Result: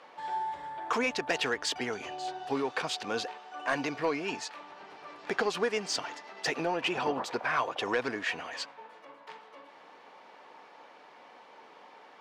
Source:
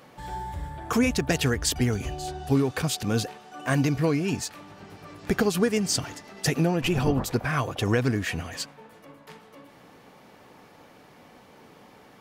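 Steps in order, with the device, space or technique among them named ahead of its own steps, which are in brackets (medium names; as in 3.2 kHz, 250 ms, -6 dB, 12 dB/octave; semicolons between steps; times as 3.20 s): intercom (band-pass 500–4300 Hz; peaking EQ 940 Hz +5.5 dB 0.25 oct; saturation -17.5 dBFS, distortion -20 dB)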